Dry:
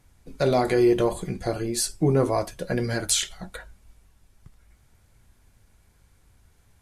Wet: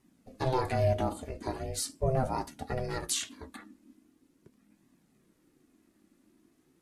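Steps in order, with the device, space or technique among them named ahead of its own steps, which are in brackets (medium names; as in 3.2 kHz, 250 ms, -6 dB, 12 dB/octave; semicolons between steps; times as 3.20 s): alien voice (ring modulator 260 Hz; flange 0.41 Hz, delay 1 ms, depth 2.6 ms, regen -42%); trim -1.5 dB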